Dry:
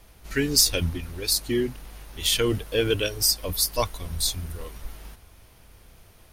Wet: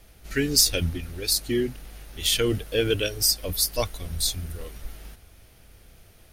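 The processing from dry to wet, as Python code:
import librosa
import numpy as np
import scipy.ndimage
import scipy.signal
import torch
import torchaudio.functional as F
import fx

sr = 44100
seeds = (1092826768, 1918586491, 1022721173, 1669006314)

y = fx.peak_eq(x, sr, hz=1000.0, db=-8.0, octaves=0.39)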